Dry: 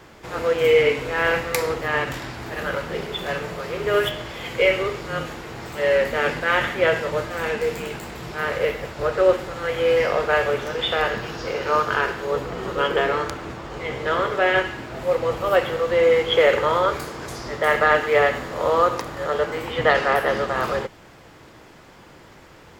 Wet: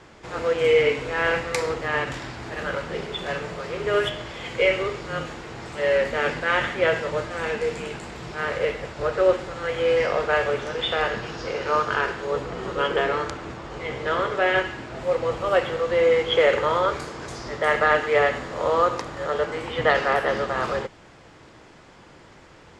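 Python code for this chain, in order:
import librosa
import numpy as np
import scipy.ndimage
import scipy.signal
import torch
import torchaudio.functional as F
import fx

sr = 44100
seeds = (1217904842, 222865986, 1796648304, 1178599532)

y = scipy.signal.sosfilt(scipy.signal.butter(4, 8900.0, 'lowpass', fs=sr, output='sos'), x)
y = y * 10.0 ** (-2.0 / 20.0)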